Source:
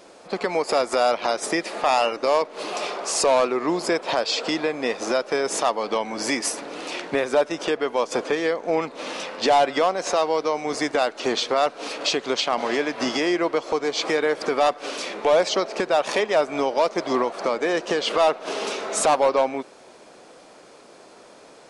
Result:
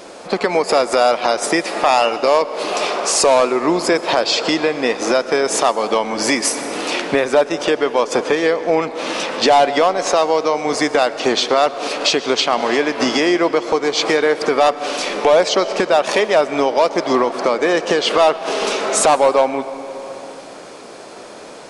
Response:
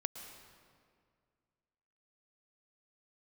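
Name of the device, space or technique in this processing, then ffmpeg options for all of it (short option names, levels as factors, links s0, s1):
ducked reverb: -filter_complex "[0:a]asplit=3[s0][s1][s2];[1:a]atrim=start_sample=2205[s3];[s1][s3]afir=irnorm=-1:irlink=0[s4];[s2]apad=whole_len=956577[s5];[s4][s5]sidechaincompress=threshold=0.0398:ratio=4:attack=16:release=705,volume=2[s6];[s0][s6]amix=inputs=2:normalize=0,volume=1.33"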